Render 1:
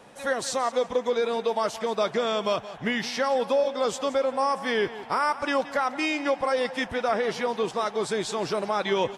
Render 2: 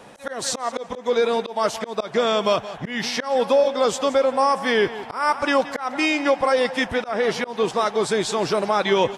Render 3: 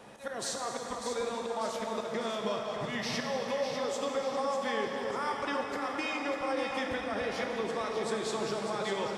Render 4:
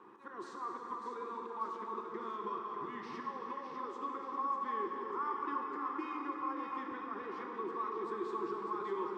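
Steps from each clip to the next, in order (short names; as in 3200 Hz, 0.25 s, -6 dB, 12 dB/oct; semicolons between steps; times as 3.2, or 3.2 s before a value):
auto swell 0.185 s; gain +6 dB
compressor 4:1, threshold -26 dBFS, peak gain reduction 11 dB; on a send: echo with dull and thin repeats by turns 0.298 s, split 1500 Hz, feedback 70%, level -4 dB; on the sum: plate-style reverb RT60 3.1 s, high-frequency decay 0.95×, DRR 2.5 dB; gain -7.5 dB
in parallel at -5.5 dB: hard clip -36.5 dBFS, distortion -7 dB; on the sum: double band-pass 620 Hz, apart 1.6 oct; gain +2 dB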